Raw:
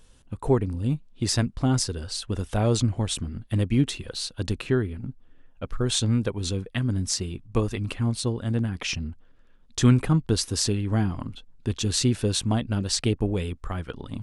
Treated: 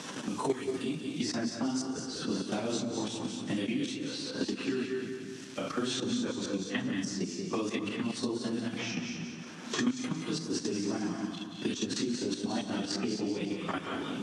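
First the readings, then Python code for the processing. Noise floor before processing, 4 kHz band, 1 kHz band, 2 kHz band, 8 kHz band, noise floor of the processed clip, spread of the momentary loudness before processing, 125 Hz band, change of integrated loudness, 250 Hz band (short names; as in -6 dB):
-54 dBFS, -7.0 dB, -3.5 dB, -2.5 dB, -9.0 dB, -43 dBFS, 11 LU, -18.0 dB, -8.0 dB, -5.0 dB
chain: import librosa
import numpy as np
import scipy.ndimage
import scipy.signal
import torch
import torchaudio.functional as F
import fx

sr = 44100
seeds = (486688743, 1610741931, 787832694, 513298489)

p1 = fx.phase_scramble(x, sr, seeds[0], window_ms=100)
p2 = fx.high_shelf(p1, sr, hz=4300.0, db=-8.5)
p3 = fx.level_steps(p2, sr, step_db=15)
p4 = fx.quant_dither(p3, sr, seeds[1], bits=12, dither='none')
p5 = fx.cabinet(p4, sr, low_hz=190.0, low_slope=24, high_hz=8800.0, hz=(280.0, 490.0, 5800.0), db=(4, -4, 6))
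p6 = p5 + fx.echo_feedback(p5, sr, ms=179, feedback_pct=30, wet_db=-11.0, dry=0)
p7 = fx.rev_gated(p6, sr, seeds[2], gate_ms=260, shape='rising', drr_db=7.0)
y = fx.band_squash(p7, sr, depth_pct=100)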